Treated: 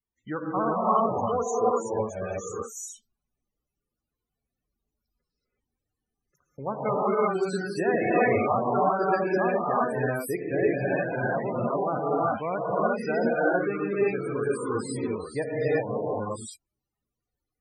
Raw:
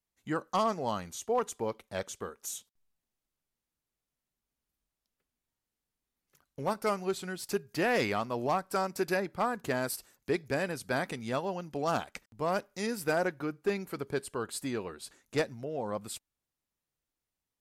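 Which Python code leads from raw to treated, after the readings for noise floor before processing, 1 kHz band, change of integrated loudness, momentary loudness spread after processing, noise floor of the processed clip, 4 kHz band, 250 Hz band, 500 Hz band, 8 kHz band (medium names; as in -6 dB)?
under -85 dBFS, +7.5 dB, +6.5 dB, 10 LU, under -85 dBFS, no reading, +6.5 dB, +7.5 dB, +0.5 dB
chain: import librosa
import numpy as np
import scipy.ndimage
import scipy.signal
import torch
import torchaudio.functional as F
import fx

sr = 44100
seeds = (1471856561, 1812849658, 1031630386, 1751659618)

y = fx.rev_gated(x, sr, seeds[0], gate_ms=400, shape='rising', drr_db=-7.0)
y = fx.spec_topn(y, sr, count=32)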